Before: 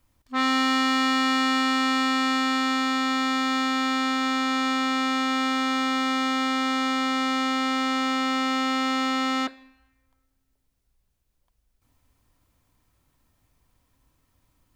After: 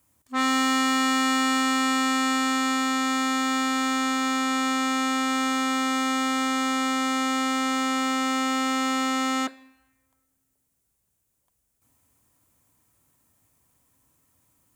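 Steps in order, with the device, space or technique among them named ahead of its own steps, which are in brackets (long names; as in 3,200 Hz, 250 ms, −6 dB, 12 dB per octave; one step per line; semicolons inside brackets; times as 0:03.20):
budget condenser microphone (high-pass filter 96 Hz; high shelf with overshoot 6,000 Hz +7.5 dB, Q 1.5)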